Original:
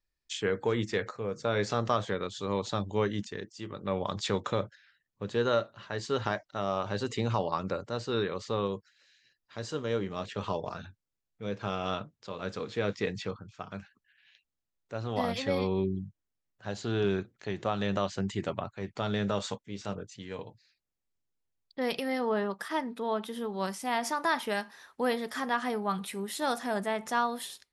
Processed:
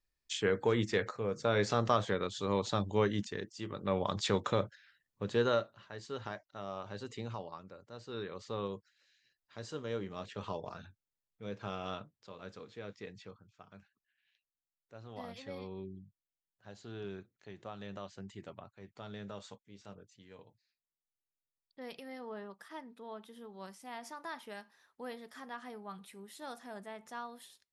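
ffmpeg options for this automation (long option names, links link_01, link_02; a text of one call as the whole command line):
ffmpeg -i in.wav -af "volume=12dB,afade=type=out:start_time=5.37:duration=0.49:silence=0.316228,afade=type=out:start_time=7.23:duration=0.49:silence=0.354813,afade=type=in:start_time=7.72:duration=0.92:silence=0.223872,afade=type=out:start_time=11.75:duration=1.03:silence=0.398107" out.wav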